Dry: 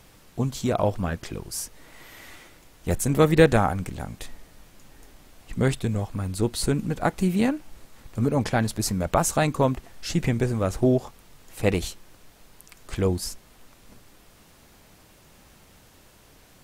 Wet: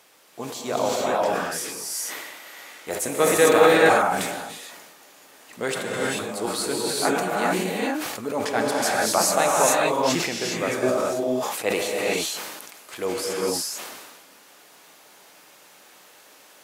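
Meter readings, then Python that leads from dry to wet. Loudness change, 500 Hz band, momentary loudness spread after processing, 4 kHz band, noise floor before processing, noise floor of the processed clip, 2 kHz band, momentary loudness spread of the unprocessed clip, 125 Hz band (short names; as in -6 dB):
+2.0 dB, +4.0 dB, 17 LU, +7.5 dB, -55 dBFS, -52 dBFS, +7.5 dB, 16 LU, -12.5 dB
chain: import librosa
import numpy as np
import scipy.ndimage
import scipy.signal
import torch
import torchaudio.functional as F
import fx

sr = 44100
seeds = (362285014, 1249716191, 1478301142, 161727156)

y = scipy.signal.sosfilt(scipy.signal.butter(2, 460.0, 'highpass', fs=sr, output='sos'), x)
y = fx.rev_gated(y, sr, seeds[0], gate_ms=460, shape='rising', drr_db=-4.5)
y = fx.sustainer(y, sr, db_per_s=36.0)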